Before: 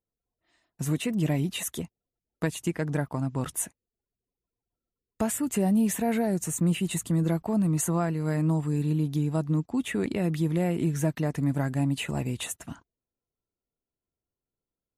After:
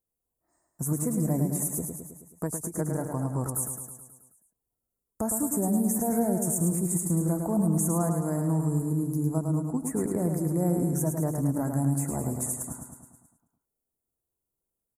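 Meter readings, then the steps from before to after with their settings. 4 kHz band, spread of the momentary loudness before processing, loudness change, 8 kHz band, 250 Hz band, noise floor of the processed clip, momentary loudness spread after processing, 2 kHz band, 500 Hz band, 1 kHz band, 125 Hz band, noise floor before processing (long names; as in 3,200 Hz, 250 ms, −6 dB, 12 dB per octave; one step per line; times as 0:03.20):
below −20 dB, 7 LU, 0.0 dB, +4.0 dB, −0.5 dB, below −85 dBFS, 9 LU, below −10 dB, 0.0 dB, 0.0 dB, −0.5 dB, below −85 dBFS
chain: Chebyshev band-stop filter 1,000–8,800 Hz, order 2
high-shelf EQ 3,300 Hz +10.5 dB
brickwall limiter −19.5 dBFS, peak gain reduction 10.5 dB
repeating echo 107 ms, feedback 59%, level −5.5 dB
every ending faded ahead of time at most 240 dB per second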